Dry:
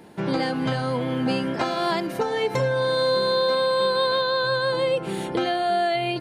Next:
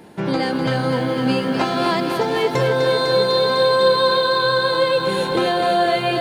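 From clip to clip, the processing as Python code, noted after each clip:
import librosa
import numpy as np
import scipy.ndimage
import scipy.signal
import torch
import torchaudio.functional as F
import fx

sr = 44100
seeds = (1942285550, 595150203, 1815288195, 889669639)

y = fx.echo_crushed(x, sr, ms=251, feedback_pct=80, bits=9, wet_db=-6.5)
y = y * 10.0 ** (3.5 / 20.0)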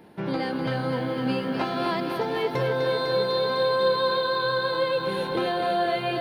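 y = fx.peak_eq(x, sr, hz=7300.0, db=-13.5, octaves=0.63)
y = y * 10.0 ** (-7.0 / 20.0)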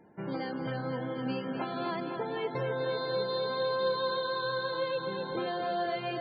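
y = fx.spec_topn(x, sr, count=64)
y = y * 10.0 ** (-7.5 / 20.0)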